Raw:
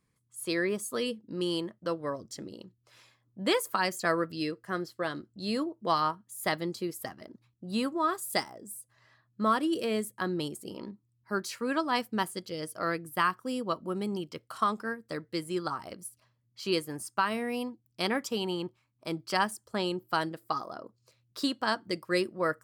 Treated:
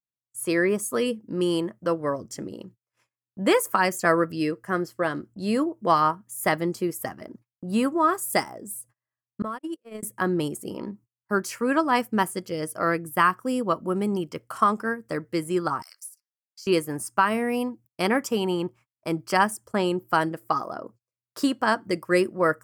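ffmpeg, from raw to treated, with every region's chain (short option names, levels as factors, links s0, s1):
-filter_complex "[0:a]asettb=1/sr,asplit=3[s0][s1][s2];[s0]atrim=end=9.424[s3];[s1]atrim=start=9.42:end=10.03,asetpts=PTS-STARTPTS,afade=t=in:d=0.004:c=qsin,afade=t=out:st=0.606:d=0.004:c=qsin,agate=range=0.00224:threshold=0.0447:ratio=16:release=100:detection=peak,acompressor=threshold=0.0178:ratio=12:attack=3.2:release=140:knee=1:detection=peak[s4];[s2]atrim=start=10.026[s5];[s3][s4]acrossfade=d=0.004:c1=hsin:c2=qsin[s6];[s6][s5]acrossfade=d=0.004:c1=qsin:c2=hsin,asettb=1/sr,asplit=3[s7][s8][s9];[s7]atrim=end=15.824[s10];[s8]atrim=start=15.82:end=16.67,asetpts=PTS-STARTPTS,afade=t=in:d=0.004:c=qsin,afade=t=out:st=0.846:d=0.004:c=qsin,highpass=f=1400:w=0.5412,highpass=f=1400:w=1.3066,highshelf=f=3900:t=q:w=3:g=8,acompressor=threshold=0.00447:ratio=3:attack=3.2:release=140:knee=1:detection=peak[s11];[s9]atrim=start=16.666[s12];[s10][s11]acrossfade=d=0.004:c1=hsin:c2=qsin[s13];[s13][s12]acrossfade=d=0.004:c1=qsin:c2=hsin,agate=range=0.0141:threshold=0.00178:ratio=16:detection=peak,equalizer=f=3900:t=o:w=0.56:g=-14,volume=2.37"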